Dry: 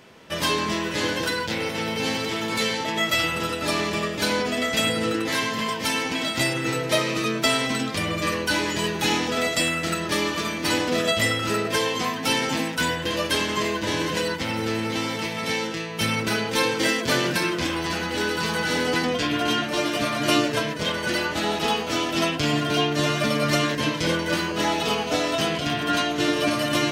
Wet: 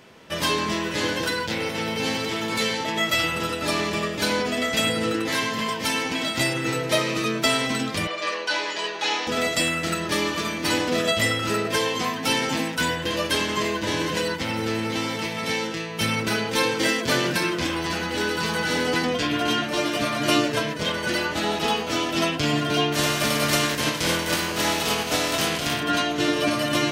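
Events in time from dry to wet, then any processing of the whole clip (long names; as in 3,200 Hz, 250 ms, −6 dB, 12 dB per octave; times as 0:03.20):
0:08.07–0:09.27: Chebyshev band-pass filter 570–5,000 Hz
0:22.92–0:25.79: compressing power law on the bin magnitudes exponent 0.61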